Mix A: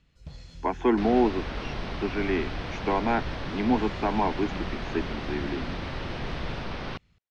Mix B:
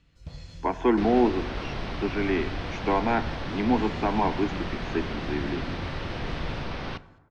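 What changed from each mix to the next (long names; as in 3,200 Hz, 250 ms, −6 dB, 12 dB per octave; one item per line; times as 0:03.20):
reverb: on, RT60 1.2 s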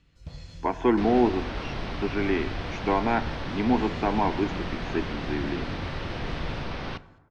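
speech: remove Butterworth high-pass 160 Hz 72 dB per octave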